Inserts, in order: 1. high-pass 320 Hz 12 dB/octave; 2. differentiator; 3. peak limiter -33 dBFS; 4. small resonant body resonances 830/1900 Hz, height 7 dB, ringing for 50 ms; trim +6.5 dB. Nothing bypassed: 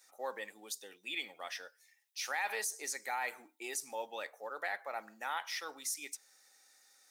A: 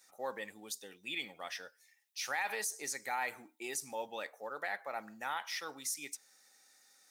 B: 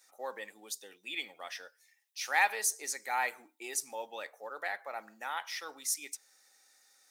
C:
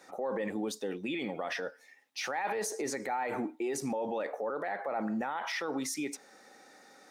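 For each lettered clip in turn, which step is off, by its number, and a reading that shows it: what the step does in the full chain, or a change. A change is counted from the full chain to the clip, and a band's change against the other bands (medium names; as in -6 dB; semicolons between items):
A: 1, 250 Hz band +4.0 dB; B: 3, crest factor change +6.0 dB; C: 2, 250 Hz band +20.5 dB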